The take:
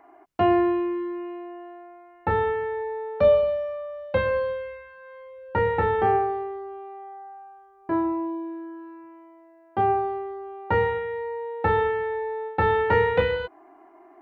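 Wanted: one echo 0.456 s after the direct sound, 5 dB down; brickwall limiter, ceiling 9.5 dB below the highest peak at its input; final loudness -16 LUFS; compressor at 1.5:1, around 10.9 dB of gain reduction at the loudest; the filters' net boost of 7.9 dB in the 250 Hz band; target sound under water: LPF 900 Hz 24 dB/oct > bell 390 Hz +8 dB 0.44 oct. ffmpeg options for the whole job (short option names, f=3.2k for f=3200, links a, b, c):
-af "equalizer=f=250:t=o:g=6,acompressor=threshold=-45dB:ratio=1.5,alimiter=level_in=3.5dB:limit=-24dB:level=0:latency=1,volume=-3.5dB,lowpass=f=900:w=0.5412,lowpass=f=900:w=1.3066,equalizer=f=390:t=o:w=0.44:g=8,aecho=1:1:456:0.562,volume=16dB"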